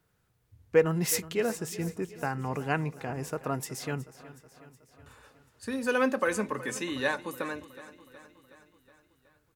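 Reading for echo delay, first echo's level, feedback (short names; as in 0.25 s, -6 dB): 0.369 s, -17.0 dB, 60%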